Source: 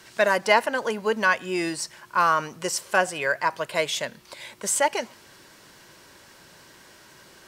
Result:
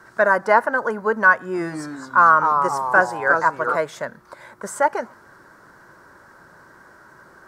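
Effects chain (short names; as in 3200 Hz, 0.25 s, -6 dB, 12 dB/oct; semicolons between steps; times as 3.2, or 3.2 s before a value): resonant high shelf 2000 Hz -11.5 dB, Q 3; 1.37–3.76 echoes that change speed 0.163 s, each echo -2 st, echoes 3, each echo -6 dB; gain +2 dB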